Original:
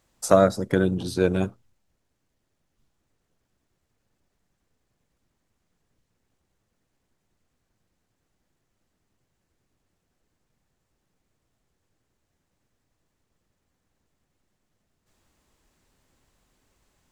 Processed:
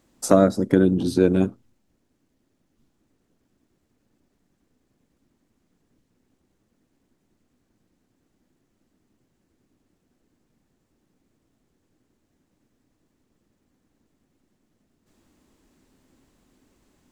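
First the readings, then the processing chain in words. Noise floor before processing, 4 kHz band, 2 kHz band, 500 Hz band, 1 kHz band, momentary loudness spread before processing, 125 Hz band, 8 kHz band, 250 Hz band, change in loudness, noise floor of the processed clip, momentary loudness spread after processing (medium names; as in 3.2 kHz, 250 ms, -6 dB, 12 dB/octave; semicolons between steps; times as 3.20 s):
-77 dBFS, -0.5 dB, -2.0 dB, +1.0 dB, -1.5 dB, 8 LU, +3.0 dB, +1.0 dB, +6.0 dB, +3.0 dB, -73 dBFS, 5 LU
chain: peaking EQ 270 Hz +12 dB 1.2 oct; in parallel at +1 dB: compression, threshold -22 dBFS, peak gain reduction 14.5 dB; on the sum: trim -5 dB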